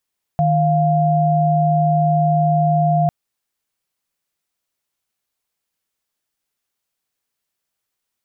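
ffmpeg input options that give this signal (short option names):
-f lavfi -i "aevalsrc='0.168*(sin(2*PI*155.56*t)+sin(2*PI*698.46*t))':d=2.7:s=44100"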